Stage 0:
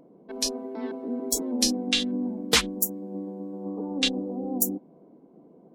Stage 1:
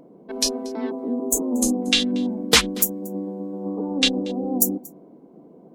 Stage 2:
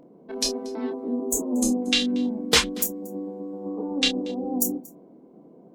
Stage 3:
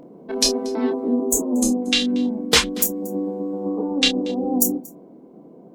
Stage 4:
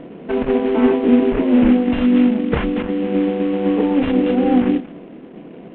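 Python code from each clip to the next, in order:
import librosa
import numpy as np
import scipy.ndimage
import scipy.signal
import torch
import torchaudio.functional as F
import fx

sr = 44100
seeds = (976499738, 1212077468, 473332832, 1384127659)

y1 = fx.spec_box(x, sr, start_s=0.9, length_s=0.92, low_hz=1300.0, high_hz=6100.0, gain_db=-19)
y1 = y1 + 10.0 ** (-23.0 / 20.0) * np.pad(y1, (int(233 * sr / 1000.0), 0))[:len(y1)]
y1 = F.gain(torch.from_numpy(y1), 5.5).numpy()
y2 = fx.peak_eq(y1, sr, hz=12000.0, db=-3.5, octaves=0.72)
y2 = fx.doubler(y2, sr, ms=28.0, db=-7)
y2 = F.gain(torch.from_numpy(y2), -3.5).numpy()
y3 = fx.rider(y2, sr, range_db=3, speed_s=0.5)
y3 = F.gain(torch.from_numpy(y3), 5.0).numpy()
y4 = fx.cvsd(y3, sr, bps=16000)
y4 = fx.low_shelf(y4, sr, hz=110.0, db=6.5)
y4 = F.gain(torch.from_numpy(y4), 7.5).numpy()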